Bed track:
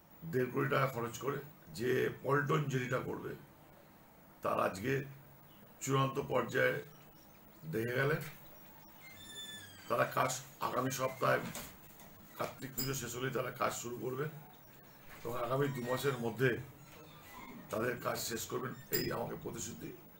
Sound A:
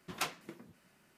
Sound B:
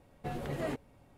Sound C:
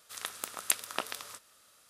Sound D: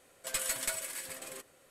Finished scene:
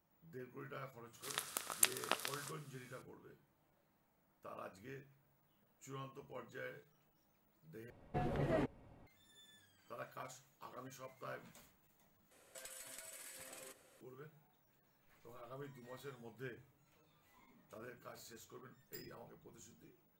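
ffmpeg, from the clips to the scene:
-filter_complex "[0:a]volume=0.133[s0];[2:a]highshelf=f=4100:g=-12[s1];[4:a]acompressor=threshold=0.00398:ratio=12:attack=11:release=78:knee=1:detection=peak[s2];[s0]asplit=3[s3][s4][s5];[s3]atrim=end=7.904[s6];[s1]atrim=end=1.17,asetpts=PTS-STARTPTS,volume=0.891[s7];[s4]atrim=start=9.066:end=12.314[s8];[s2]atrim=end=1.7,asetpts=PTS-STARTPTS,volume=0.596[s9];[s5]atrim=start=14.006[s10];[3:a]atrim=end=1.89,asetpts=PTS-STARTPTS,volume=0.631,afade=t=in:d=0.004:c=hsin,afade=t=out:st=1.886:d=0.004:c=hsin,adelay=1130[s11];[s6][s7]acrossfade=d=0.004:c1=hsin:c2=hsin[s12];[s12][s8]acrossfade=d=0.004:c1=hsin:c2=hsin[s13];[s13][s9]acrossfade=d=0.004:c1=hsin:c2=hsin[s14];[s14][s10]acrossfade=d=0.004:c1=hsin:c2=hsin[s15];[s15][s11]amix=inputs=2:normalize=0"

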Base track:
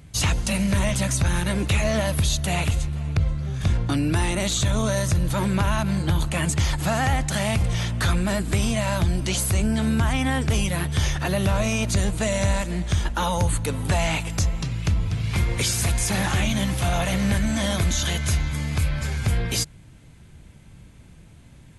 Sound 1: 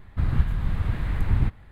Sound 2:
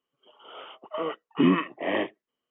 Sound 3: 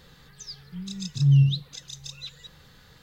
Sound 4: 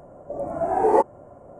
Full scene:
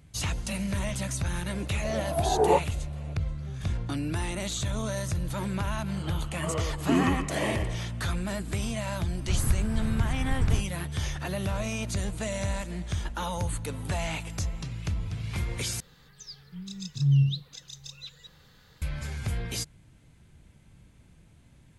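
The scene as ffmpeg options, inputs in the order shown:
-filter_complex "[0:a]volume=0.376[s0];[4:a]flanger=delay=15:depth=5.8:speed=2.6[s1];[2:a]aecho=1:1:116|232|348|464:0.596|0.208|0.073|0.0255[s2];[s0]asplit=2[s3][s4];[s3]atrim=end=15.804[s5];[3:a]atrim=end=3.02,asetpts=PTS-STARTPTS,volume=0.631[s6];[s4]atrim=start=18.816[s7];[s1]atrim=end=1.59,asetpts=PTS-STARTPTS,volume=0.794,afade=t=in:d=0.004:c=hsin,afade=t=out:st=1.586:d=0.004:c=hsin,adelay=1550[s8];[s2]atrim=end=2.5,asetpts=PTS-STARTPTS,volume=0.631,afade=t=in:d=0.004:c=hsin,afade=t=out:st=2.496:d=0.004:c=hsin,adelay=242109S[s9];[1:a]atrim=end=1.71,asetpts=PTS-STARTPTS,volume=0.631,afade=t=in:d=0.004:c=hsin,afade=t=out:st=1.706:d=0.004:c=hsin,adelay=9110[s10];[s5][s6]acrossfade=d=0.004:c1=hsin:c2=hsin[s11];[s11][s7]acrossfade=d=0.004:c1=hsin:c2=hsin[s12];[s12][s8][s9][s10]amix=inputs=4:normalize=0"

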